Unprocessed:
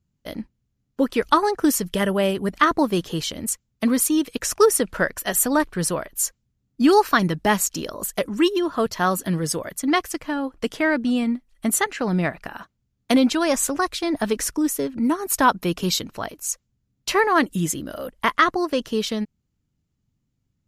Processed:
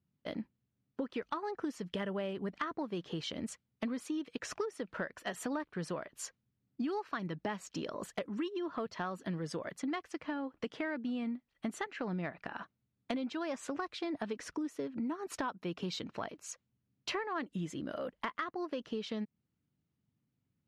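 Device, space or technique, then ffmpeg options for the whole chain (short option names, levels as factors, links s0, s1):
AM radio: -af "highpass=120,lowpass=3500,acompressor=threshold=0.0355:ratio=8,asoftclip=type=tanh:threshold=0.141,volume=0.562"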